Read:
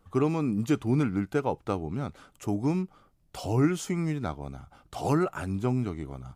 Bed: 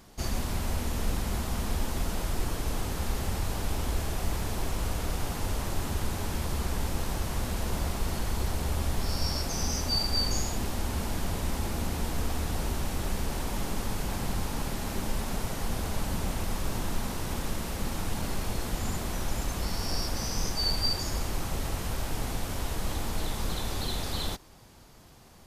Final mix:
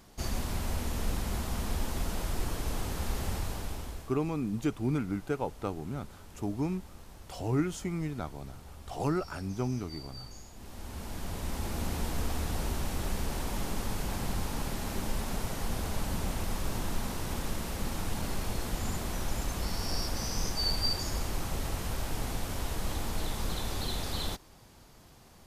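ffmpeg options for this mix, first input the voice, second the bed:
-filter_complex "[0:a]adelay=3950,volume=-5dB[a];[1:a]volume=14.5dB,afade=t=out:st=3.32:d=0.82:silence=0.149624,afade=t=in:st=10.54:d=1.36:silence=0.141254[b];[a][b]amix=inputs=2:normalize=0"

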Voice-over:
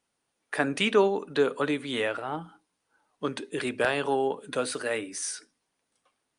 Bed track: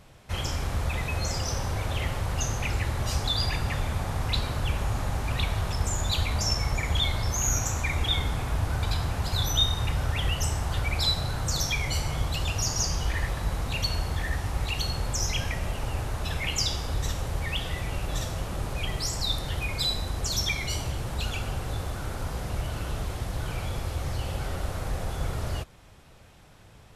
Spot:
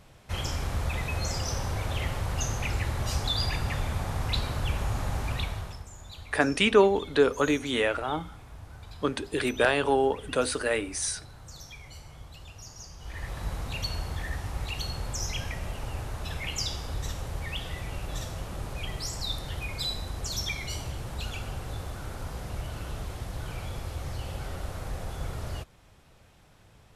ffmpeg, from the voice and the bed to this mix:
-filter_complex "[0:a]adelay=5800,volume=2.5dB[a];[1:a]volume=12dB,afade=t=out:st=5.24:d=0.61:silence=0.149624,afade=t=in:st=12.98:d=0.46:silence=0.211349[b];[a][b]amix=inputs=2:normalize=0"

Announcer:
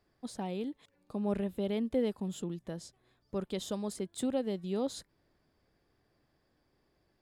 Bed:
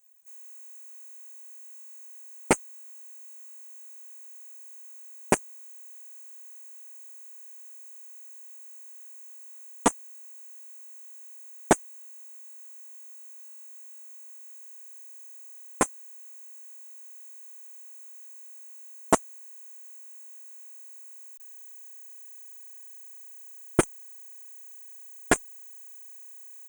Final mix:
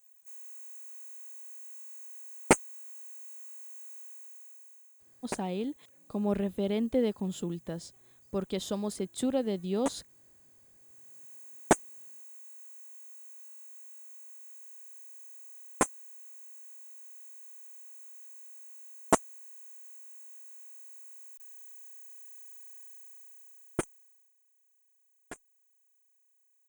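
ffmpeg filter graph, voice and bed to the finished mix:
-filter_complex "[0:a]adelay=5000,volume=3dB[a];[1:a]volume=11dB,afade=t=out:st=3.98:d=0.99:silence=0.199526,afade=t=in:st=10.76:d=0.58:silence=0.281838,afade=t=out:st=22.81:d=1.52:silence=0.0944061[b];[a][b]amix=inputs=2:normalize=0"

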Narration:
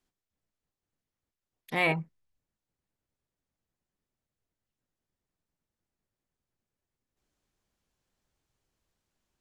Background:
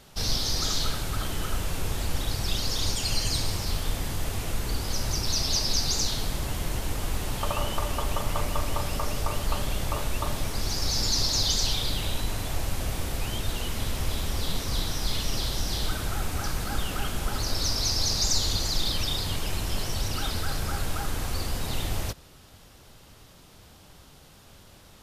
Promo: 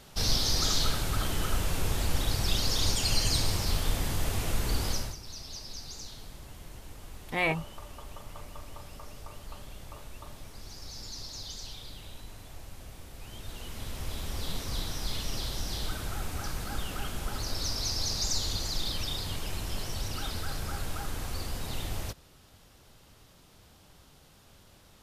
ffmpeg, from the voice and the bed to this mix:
-filter_complex "[0:a]adelay=5600,volume=-1.5dB[a];[1:a]volume=11dB,afade=t=out:st=4.87:d=0.29:silence=0.149624,afade=t=in:st=13.13:d=1.38:silence=0.281838[b];[a][b]amix=inputs=2:normalize=0"

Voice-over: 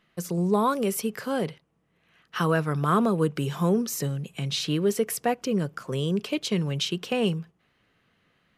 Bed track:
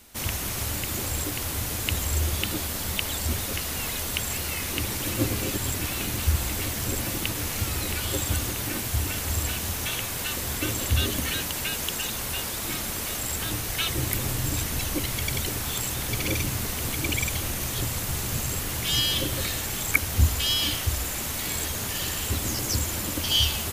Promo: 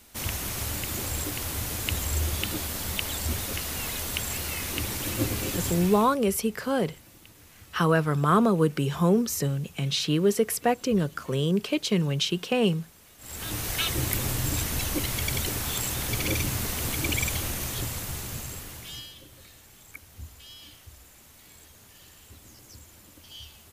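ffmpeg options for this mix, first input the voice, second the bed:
-filter_complex "[0:a]adelay=5400,volume=1.5dB[a];[1:a]volume=21dB,afade=t=out:st=5.67:d=0.49:silence=0.0841395,afade=t=in:st=13.18:d=0.48:silence=0.0707946,afade=t=out:st=17.28:d=1.86:silence=0.0794328[b];[a][b]amix=inputs=2:normalize=0"

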